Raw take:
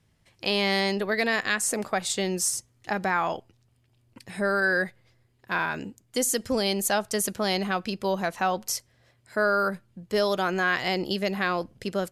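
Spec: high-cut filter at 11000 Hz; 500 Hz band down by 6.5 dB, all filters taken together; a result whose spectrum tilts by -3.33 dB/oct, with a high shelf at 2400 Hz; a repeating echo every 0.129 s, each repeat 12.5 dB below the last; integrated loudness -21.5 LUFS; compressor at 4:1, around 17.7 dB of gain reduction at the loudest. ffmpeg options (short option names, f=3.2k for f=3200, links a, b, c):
-af "lowpass=11k,equalizer=f=500:t=o:g=-8.5,highshelf=f=2.4k:g=-5.5,acompressor=threshold=-46dB:ratio=4,aecho=1:1:129|258|387:0.237|0.0569|0.0137,volume=24.5dB"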